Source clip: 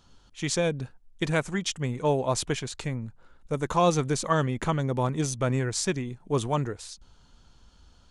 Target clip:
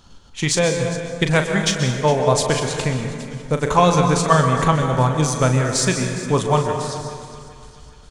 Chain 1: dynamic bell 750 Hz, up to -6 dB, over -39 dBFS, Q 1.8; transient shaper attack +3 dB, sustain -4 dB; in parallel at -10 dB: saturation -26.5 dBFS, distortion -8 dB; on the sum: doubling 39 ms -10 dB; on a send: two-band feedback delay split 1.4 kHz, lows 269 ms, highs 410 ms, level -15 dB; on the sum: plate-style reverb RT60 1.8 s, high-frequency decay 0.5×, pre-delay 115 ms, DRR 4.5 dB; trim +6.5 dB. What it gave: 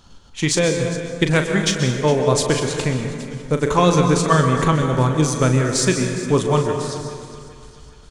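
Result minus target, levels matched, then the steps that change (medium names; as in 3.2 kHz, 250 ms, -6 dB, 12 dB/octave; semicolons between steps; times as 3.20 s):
1 kHz band -2.5 dB
change: dynamic bell 340 Hz, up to -6 dB, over -39 dBFS, Q 1.8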